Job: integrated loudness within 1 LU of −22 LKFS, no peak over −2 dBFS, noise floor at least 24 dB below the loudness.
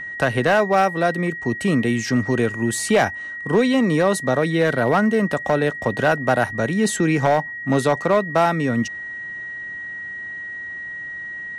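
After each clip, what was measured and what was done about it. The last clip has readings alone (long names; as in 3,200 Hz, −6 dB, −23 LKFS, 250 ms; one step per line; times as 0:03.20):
share of clipped samples 1.4%; peaks flattened at −10.0 dBFS; interfering tone 1,900 Hz; level of the tone −29 dBFS; integrated loudness −20.5 LKFS; sample peak −10.0 dBFS; target loudness −22.0 LKFS
→ clipped peaks rebuilt −10 dBFS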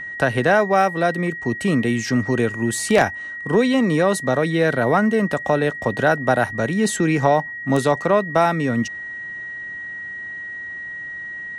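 share of clipped samples 0.0%; interfering tone 1,900 Hz; level of the tone −29 dBFS
→ notch filter 1,900 Hz, Q 30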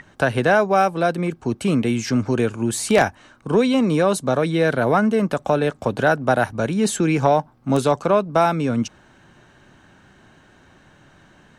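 interfering tone none found; integrated loudness −20.0 LKFS; sample peak −1.0 dBFS; target loudness −22.0 LKFS
→ level −2 dB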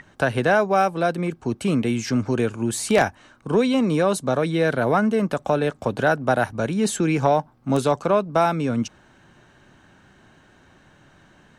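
integrated loudness −22.0 LKFS; sample peak −3.0 dBFS; background noise floor −55 dBFS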